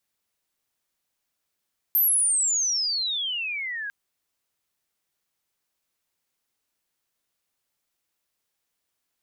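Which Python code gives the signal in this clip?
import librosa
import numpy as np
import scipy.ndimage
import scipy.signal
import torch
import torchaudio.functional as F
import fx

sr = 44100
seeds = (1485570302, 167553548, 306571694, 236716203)

y = fx.chirp(sr, length_s=1.95, from_hz=13000.0, to_hz=1600.0, law='logarithmic', from_db=-17.0, to_db=-29.5)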